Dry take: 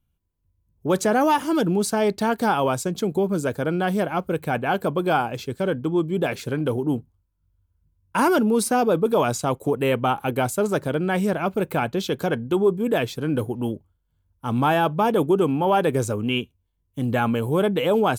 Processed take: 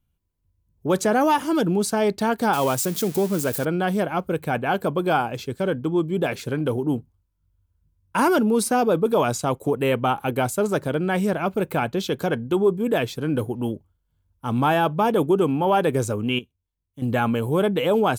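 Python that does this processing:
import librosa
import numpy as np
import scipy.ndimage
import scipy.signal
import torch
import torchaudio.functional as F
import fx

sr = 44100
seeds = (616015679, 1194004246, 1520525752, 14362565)

y = fx.crossing_spikes(x, sr, level_db=-22.0, at=(2.53, 3.65))
y = fx.edit(y, sr, fx.clip_gain(start_s=16.39, length_s=0.63, db=-10.0), tone=tone)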